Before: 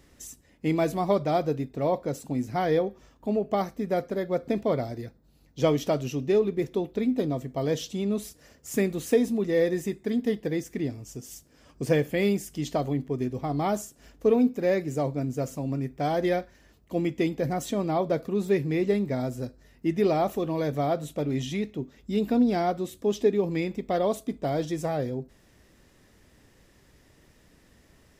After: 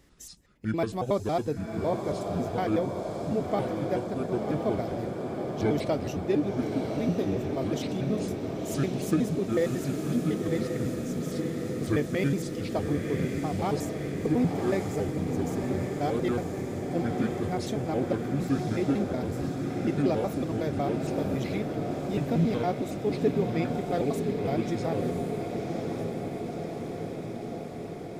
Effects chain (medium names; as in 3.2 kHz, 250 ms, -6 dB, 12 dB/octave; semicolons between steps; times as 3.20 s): pitch shift switched off and on -6.5 st, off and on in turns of 92 ms; echo that smears into a reverb 1061 ms, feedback 73%, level -4.5 dB; trim -3 dB